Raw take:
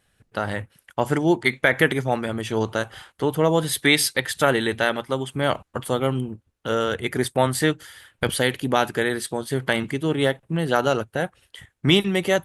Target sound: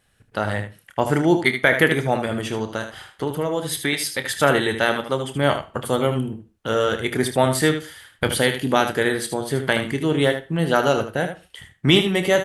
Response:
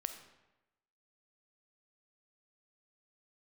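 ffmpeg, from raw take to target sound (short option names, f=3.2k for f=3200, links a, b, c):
-filter_complex "[0:a]asettb=1/sr,asplit=3[a][b][c];[a]atrim=end=2.464[d];[b]atrim=start=2.46:end=4.25,asetpts=PTS-STARTPTS,afade=t=in:d=0.004:c=qsin,afade=t=out:st=1.786:d=0.004:c=qsin,acompressor=threshold=-25dB:ratio=2.5[e];[c]atrim=start=4.246[f];[d][e]acrossfade=d=0.004:c1=hsin:c2=qsin[g];[g][f]acrossfade=d=0.004:c1=qsin:c2=hsin,aecho=1:1:28|77:0.266|0.355,asplit=2[h][i];[1:a]atrim=start_sample=2205,afade=t=out:st=0.2:d=0.01,atrim=end_sample=9261[j];[i][j]afir=irnorm=-1:irlink=0,volume=-4.5dB[k];[h][k]amix=inputs=2:normalize=0,volume=-2dB"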